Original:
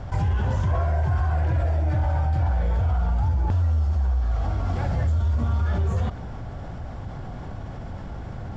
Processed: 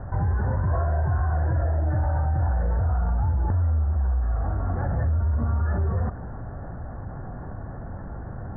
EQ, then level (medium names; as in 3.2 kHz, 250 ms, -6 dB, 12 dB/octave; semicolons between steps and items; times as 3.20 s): Chebyshev low-pass 1.8 kHz, order 6; 0.0 dB